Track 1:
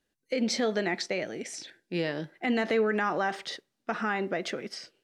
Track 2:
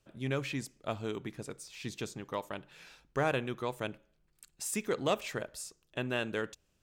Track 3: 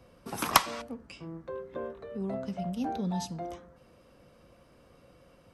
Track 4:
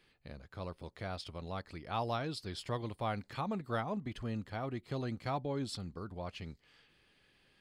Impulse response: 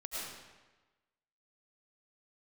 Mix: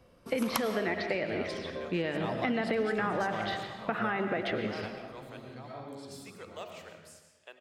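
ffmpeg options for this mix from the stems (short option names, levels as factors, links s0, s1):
-filter_complex "[0:a]lowpass=f=3500:w=0.5412,lowpass=f=3500:w=1.3066,volume=1.26,asplit=3[s0][s1][s2];[s1]volume=0.501[s3];[1:a]deesser=0.75,highpass=f=470:w=0.5412,highpass=f=470:w=1.3066,adelay=1500,volume=0.2,asplit=2[s4][s5];[s5]volume=0.596[s6];[2:a]volume=0.596,asplit=2[s7][s8];[s8]volume=0.376[s9];[3:a]highpass=100,adelay=300,volume=0.891,asplit=2[s10][s11];[s11]volume=0.422[s12];[s2]apad=whole_len=348665[s13];[s10][s13]sidechaingate=range=0.0224:threshold=0.00316:ratio=16:detection=peak[s14];[4:a]atrim=start_sample=2205[s15];[s3][s6][s9][s12]amix=inputs=4:normalize=0[s16];[s16][s15]afir=irnorm=-1:irlink=0[s17];[s0][s4][s7][s14][s17]amix=inputs=5:normalize=0,acompressor=threshold=0.0398:ratio=4"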